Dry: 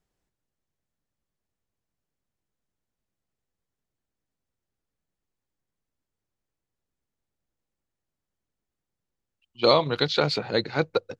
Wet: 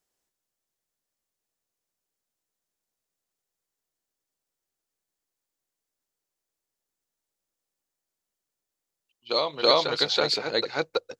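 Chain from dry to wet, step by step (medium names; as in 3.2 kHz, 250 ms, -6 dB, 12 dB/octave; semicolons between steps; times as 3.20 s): tone controls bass -13 dB, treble +8 dB; on a send: reverse echo 327 ms -5.5 dB; on the sum: trim -1.5 dB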